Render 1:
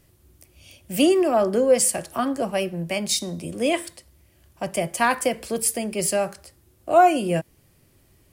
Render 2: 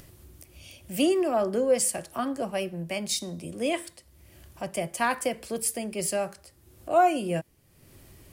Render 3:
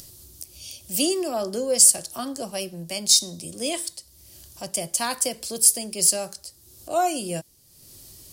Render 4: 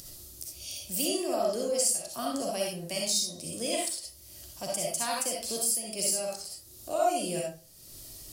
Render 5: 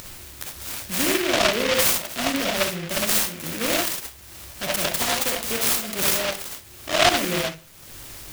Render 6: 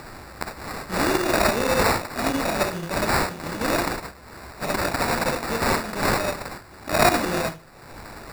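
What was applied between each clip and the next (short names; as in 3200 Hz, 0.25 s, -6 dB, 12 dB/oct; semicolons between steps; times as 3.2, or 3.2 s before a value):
upward compressor, threshold -34 dBFS; gain -5.5 dB
resonant high shelf 3200 Hz +13 dB, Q 1.5; gain -1.5 dB
compressor 3:1, threshold -28 dBFS, peak gain reduction 13.5 dB; reverb RT60 0.35 s, pre-delay 20 ms, DRR -2.5 dB; gain -3.5 dB
noise-modulated delay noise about 2100 Hz, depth 0.24 ms; gain +8 dB
sample-and-hold 14×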